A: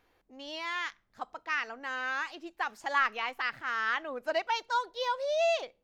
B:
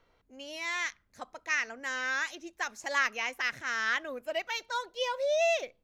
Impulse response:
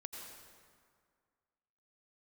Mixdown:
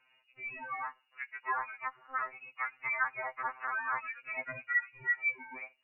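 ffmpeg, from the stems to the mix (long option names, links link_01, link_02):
-filter_complex "[0:a]volume=-5dB[link_01];[1:a]acompressor=threshold=-36dB:ratio=4,volume=-1,volume=2dB[link_02];[link_01][link_02]amix=inputs=2:normalize=0,lowpass=frequency=2500:width_type=q:width=0.5098,lowpass=frequency=2500:width_type=q:width=0.6013,lowpass=frequency=2500:width_type=q:width=0.9,lowpass=frequency=2500:width_type=q:width=2.563,afreqshift=-2900,afftfilt=real='re*2.45*eq(mod(b,6),0)':imag='im*2.45*eq(mod(b,6),0)':win_size=2048:overlap=0.75"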